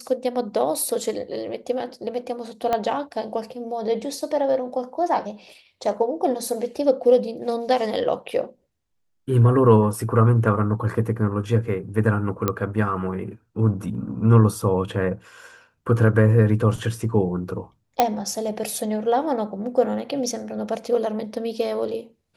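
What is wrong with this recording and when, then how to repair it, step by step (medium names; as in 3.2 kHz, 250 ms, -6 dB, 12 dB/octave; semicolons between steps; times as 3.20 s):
2.73 s: pop -10 dBFS
12.48 s: pop -7 dBFS
18.00 s: pop -3 dBFS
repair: de-click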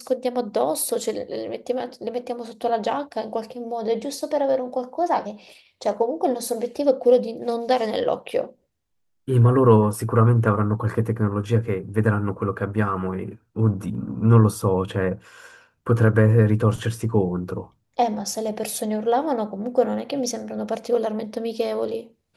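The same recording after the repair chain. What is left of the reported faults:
2.73 s: pop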